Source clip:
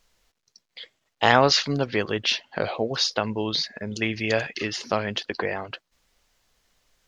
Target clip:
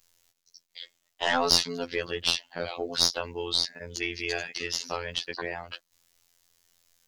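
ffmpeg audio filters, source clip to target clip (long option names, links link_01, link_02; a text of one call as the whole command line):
ffmpeg -i in.wav -af "crystalizer=i=3:c=0,afftfilt=real='hypot(re,im)*cos(PI*b)':imag='0':win_size=2048:overlap=0.75,aeval=exprs='(tanh(1.41*val(0)+0.55)-tanh(0.55))/1.41':channel_layout=same,volume=-1dB" out.wav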